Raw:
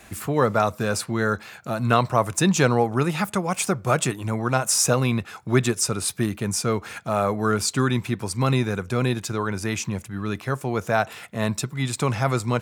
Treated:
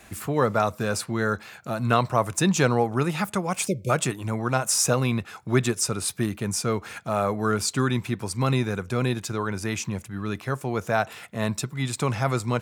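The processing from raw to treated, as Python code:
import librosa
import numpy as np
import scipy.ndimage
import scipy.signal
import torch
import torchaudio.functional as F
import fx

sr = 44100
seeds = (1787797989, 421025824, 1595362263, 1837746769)

y = fx.spec_erase(x, sr, start_s=3.68, length_s=0.22, low_hz=620.0, high_hz=2100.0)
y = F.gain(torch.from_numpy(y), -2.0).numpy()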